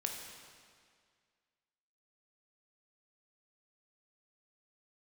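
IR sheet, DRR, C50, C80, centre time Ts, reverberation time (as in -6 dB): 1.5 dB, 3.5 dB, 5.0 dB, 64 ms, 2.0 s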